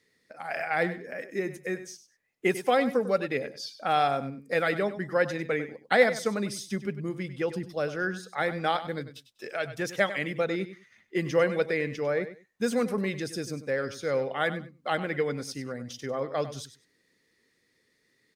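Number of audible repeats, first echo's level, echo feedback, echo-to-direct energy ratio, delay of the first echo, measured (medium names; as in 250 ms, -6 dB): 2, -13.0 dB, 20%, -13.0 dB, 98 ms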